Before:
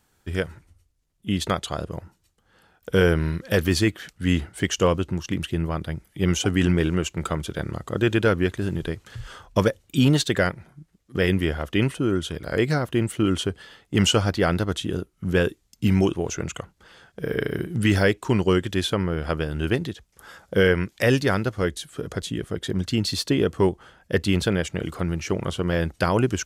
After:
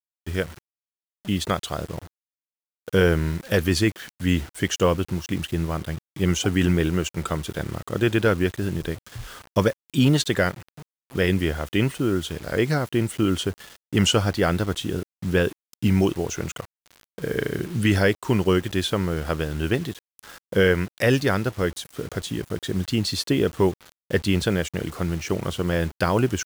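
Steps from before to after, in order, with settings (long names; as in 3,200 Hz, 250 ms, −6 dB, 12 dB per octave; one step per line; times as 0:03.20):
bit reduction 7 bits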